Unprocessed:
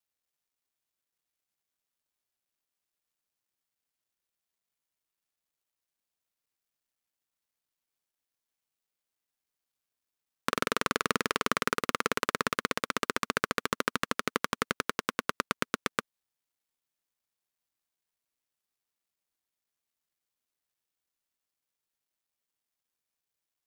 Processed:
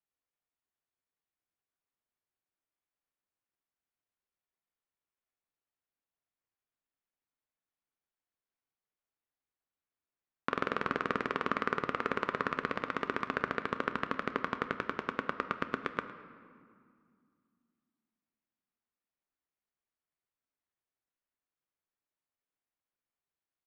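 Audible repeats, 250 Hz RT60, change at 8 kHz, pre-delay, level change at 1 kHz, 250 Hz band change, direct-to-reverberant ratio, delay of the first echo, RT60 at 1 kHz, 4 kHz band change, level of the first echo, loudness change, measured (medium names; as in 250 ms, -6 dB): 1, 3.1 s, under -20 dB, 3 ms, -2.0 dB, -2.0 dB, 8.5 dB, 109 ms, 2.2 s, -11.5 dB, -18.0 dB, -3.5 dB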